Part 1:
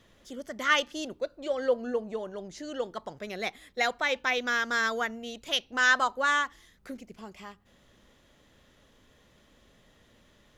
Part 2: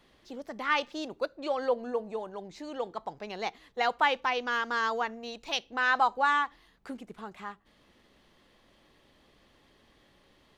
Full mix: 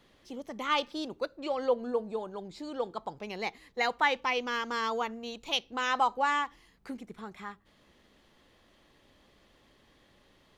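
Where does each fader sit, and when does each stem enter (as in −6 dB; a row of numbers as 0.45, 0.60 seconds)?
−10.0, −1.0 decibels; 0.00, 0.00 seconds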